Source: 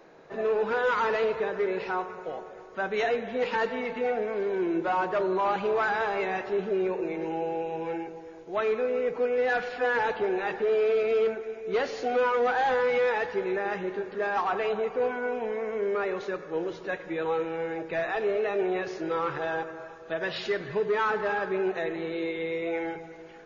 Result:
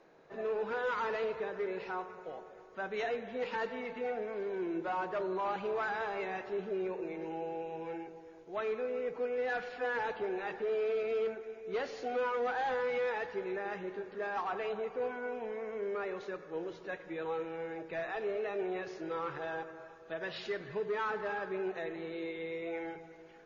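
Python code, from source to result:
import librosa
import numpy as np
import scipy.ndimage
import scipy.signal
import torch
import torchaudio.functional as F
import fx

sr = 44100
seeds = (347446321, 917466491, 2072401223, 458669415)

y = scipy.signal.sosfilt(scipy.signal.butter(2, 10000.0, 'lowpass', fs=sr, output='sos'), x)
y = F.gain(torch.from_numpy(y), -8.5).numpy()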